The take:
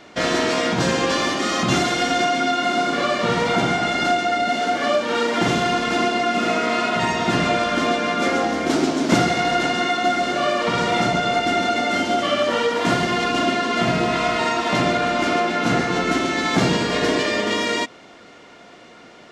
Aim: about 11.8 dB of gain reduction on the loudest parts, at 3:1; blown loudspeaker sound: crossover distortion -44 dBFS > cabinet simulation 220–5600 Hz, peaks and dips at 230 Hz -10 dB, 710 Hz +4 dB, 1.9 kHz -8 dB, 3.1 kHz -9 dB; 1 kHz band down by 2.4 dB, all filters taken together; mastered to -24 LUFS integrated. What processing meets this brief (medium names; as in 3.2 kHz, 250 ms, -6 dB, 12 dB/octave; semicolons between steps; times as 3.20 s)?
peaking EQ 1 kHz -8.5 dB; compression 3:1, threshold -30 dBFS; crossover distortion -44 dBFS; cabinet simulation 220–5600 Hz, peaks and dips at 230 Hz -10 dB, 710 Hz +4 dB, 1.9 kHz -8 dB, 3.1 kHz -9 dB; trim +9 dB